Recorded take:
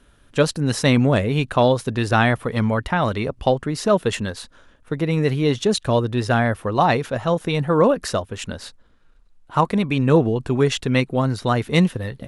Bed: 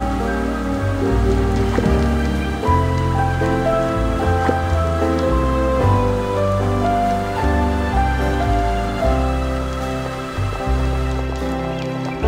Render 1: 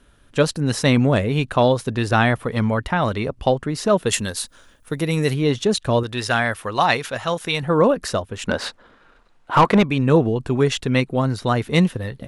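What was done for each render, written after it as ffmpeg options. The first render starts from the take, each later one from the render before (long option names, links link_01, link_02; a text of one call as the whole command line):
ffmpeg -i in.wav -filter_complex "[0:a]asplit=3[link_01][link_02][link_03];[link_01]afade=type=out:start_time=4.06:duration=0.02[link_04];[link_02]aemphasis=mode=production:type=75fm,afade=type=in:start_time=4.06:duration=0.02,afade=type=out:start_time=5.33:duration=0.02[link_05];[link_03]afade=type=in:start_time=5.33:duration=0.02[link_06];[link_04][link_05][link_06]amix=inputs=3:normalize=0,asettb=1/sr,asplit=3[link_07][link_08][link_09];[link_07]atrim=end=6.034[link_10];[link_08]atrim=start=6.03:end=7.63,asetpts=PTS-STARTPTS,afade=type=in:duration=0.004:curve=qsin,afade=type=out:start_time=1.596:duration=0.004:curve=qsin,tiltshelf=frequency=930:gain=-7[link_11];[link_09]atrim=start=7.626[link_12];[link_10][link_11]acrossfade=duration=0.004:curve1=hsin:curve2=qsin[link_13];[link_13][link_12]acrossfade=duration=0.004:curve1=qsin:curve2=hsin,asettb=1/sr,asplit=3[link_14][link_15][link_16];[link_14]atrim=end=8.484[link_17];[link_15]atrim=start=8.48:end=9.83,asetpts=PTS-STARTPTS,afade=type=in:duration=0.004:curve=qsin,afade=type=out:start_time=1.346:duration=0.004:curve=qsin,asplit=2[link_18][link_19];[link_19]highpass=frequency=720:poles=1,volume=24dB,asoftclip=type=tanh:threshold=-3.5dB[link_20];[link_18][link_20]amix=inputs=2:normalize=0,lowpass=frequency=1500:poles=1,volume=-6dB[link_21];[link_16]atrim=start=9.826[link_22];[link_17][link_21]acrossfade=duration=0.004:curve1=hsin:curve2=qsin[link_23];[link_23][link_22]acrossfade=duration=0.004:curve1=qsin:curve2=hsin" out.wav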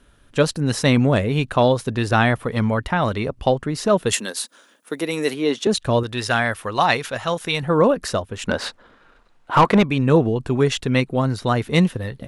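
ffmpeg -i in.wav -filter_complex "[0:a]asettb=1/sr,asplit=3[link_01][link_02][link_03];[link_01]atrim=end=4.154[link_04];[link_02]atrim=start=4.15:end=5.67,asetpts=PTS-STARTPTS,afade=type=in:duration=0.004:curve=qsin,afade=type=out:start_time=1.516:duration=0.004:curve=qsin,highpass=frequency=230:width=0.5412,highpass=frequency=230:width=1.3066[link_05];[link_03]atrim=start=5.666[link_06];[link_04][link_05]acrossfade=duration=0.004:curve1=hsin:curve2=qsin[link_07];[link_07][link_06]acrossfade=duration=0.004:curve1=qsin:curve2=hsin" out.wav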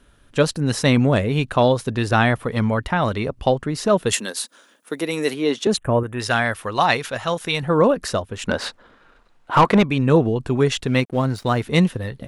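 ffmpeg -i in.wav -filter_complex "[0:a]asettb=1/sr,asplit=3[link_01][link_02][link_03];[link_01]atrim=end=5.774[link_04];[link_02]atrim=start=5.77:end=6.2,asetpts=PTS-STARTPTS,afade=type=in:duration=0.004:curve=qsin,afade=type=out:start_time=0.426:duration=0.004:curve=qsin,asuperstop=centerf=4600:order=4:qfactor=0.64[link_05];[link_03]atrim=start=6.196[link_06];[link_04][link_05]acrossfade=duration=0.004:curve1=hsin:curve2=qsin[link_07];[link_07][link_06]acrossfade=duration=0.004:curve1=qsin:curve2=hsin,asettb=1/sr,asplit=3[link_08][link_09][link_10];[link_08]atrim=end=10.874[link_11];[link_09]atrim=start=10.87:end=11.63,asetpts=PTS-STARTPTS,afade=type=in:duration=0.004:curve=qsin,afade=type=out:start_time=0.756:duration=0.004:curve=qsin,aeval=exprs='sgn(val(0))*max(abs(val(0))-0.00708,0)':channel_layout=same[link_12];[link_10]atrim=start=11.626[link_13];[link_11][link_12]acrossfade=duration=0.004:curve1=hsin:curve2=qsin[link_14];[link_14][link_13]acrossfade=duration=0.004:curve1=qsin:curve2=hsin" out.wav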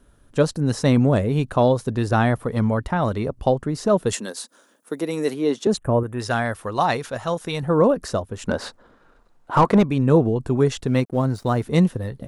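ffmpeg -i in.wav -filter_complex "[0:a]equalizer=frequency=2700:width=0.71:gain=-9.5,acrossover=split=8700[link_01][link_02];[link_02]acompressor=threshold=-48dB:ratio=4:attack=1:release=60[link_03];[link_01][link_03]amix=inputs=2:normalize=0" out.wav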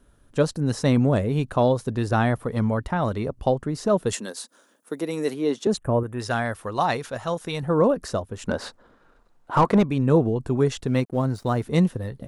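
ffmpeg -i in.wav -af "volume=-2.5dB" out.wav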